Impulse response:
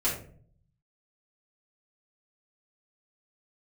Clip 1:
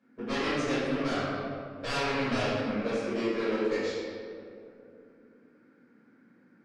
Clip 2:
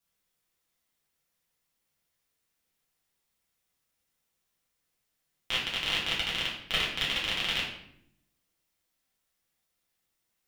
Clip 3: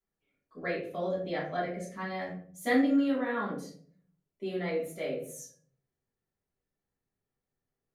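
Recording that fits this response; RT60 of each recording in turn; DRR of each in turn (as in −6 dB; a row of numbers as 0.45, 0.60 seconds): 3; 2.6, 0.70, 0.50 seconds; −14.5, −6.0, −9.0 decibels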